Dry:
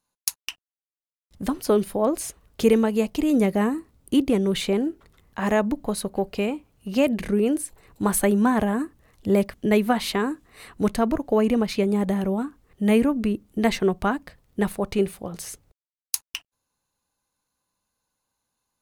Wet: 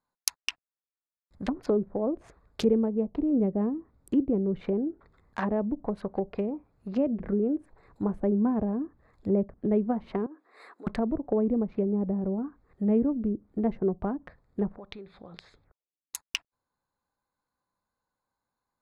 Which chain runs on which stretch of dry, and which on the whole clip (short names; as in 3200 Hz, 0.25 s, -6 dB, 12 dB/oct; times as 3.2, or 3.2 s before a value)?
10.26–10.87 compressor 16:1, threshold -32 dBFS + HPF 320 Hz 24 dB/oct
14.76–16.15 compressor 4:1, threshold -40 dBFS + envelope low-pass 240–3600 Hz up, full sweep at -44.5 dBFS
whole clip: Wiener smoothing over 15 samples; treble ducked by the level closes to 460 Hz, closed at -20.5 dBFS; tilt shelf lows -4 dB, about 770 Hz; gain -1 dB